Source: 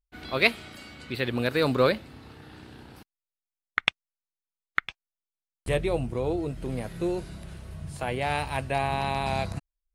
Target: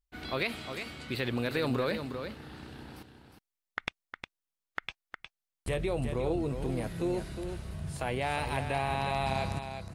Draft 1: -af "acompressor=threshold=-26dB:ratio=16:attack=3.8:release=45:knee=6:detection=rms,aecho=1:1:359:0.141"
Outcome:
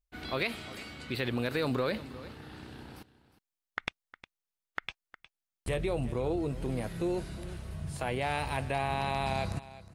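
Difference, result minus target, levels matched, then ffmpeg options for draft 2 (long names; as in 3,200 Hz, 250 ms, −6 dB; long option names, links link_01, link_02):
echo-to-direct −9 dB
-af "acompressor=threshold=-26dB:ratio=16:attack=3.8:release=45:knee=6:detection=rms,aecho=1:1:359:0.398"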